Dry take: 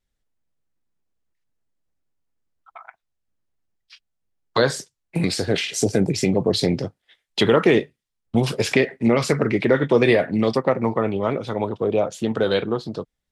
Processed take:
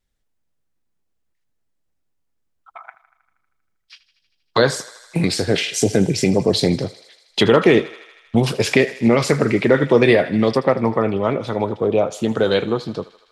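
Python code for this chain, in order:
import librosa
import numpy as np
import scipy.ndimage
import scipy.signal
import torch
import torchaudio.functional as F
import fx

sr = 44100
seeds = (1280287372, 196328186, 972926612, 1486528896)

y = fx.echo_thinned(x, sr, ms=79, feedback_pct=74, hz=550.0, wet_db=-16.5)
y = y * librosa.db_to_amplitude(3.0)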